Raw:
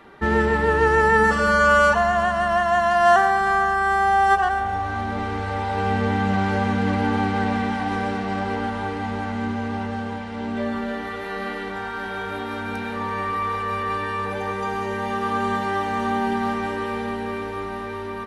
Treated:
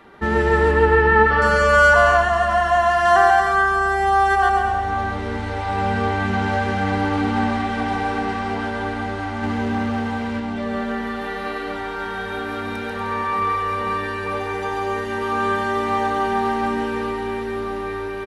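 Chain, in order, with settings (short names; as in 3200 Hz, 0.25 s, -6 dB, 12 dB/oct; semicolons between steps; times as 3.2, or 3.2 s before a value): 0.71–1.42 LPF 3800 Hz 24 dB/oct; bouncing-ball echo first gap 0.14 s, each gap 0.7×, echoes 5; 9.43–10.4 sample leveller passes 1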